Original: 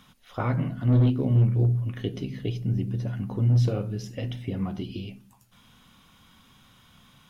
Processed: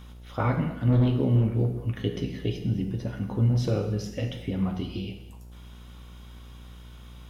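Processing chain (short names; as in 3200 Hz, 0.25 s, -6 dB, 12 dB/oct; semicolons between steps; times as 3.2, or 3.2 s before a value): non-linear reverb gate 0.33 s falling, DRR 5 dB; buzz 60 Hz, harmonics 15, -46 dBFS -9 dB/oct; gain +1 dB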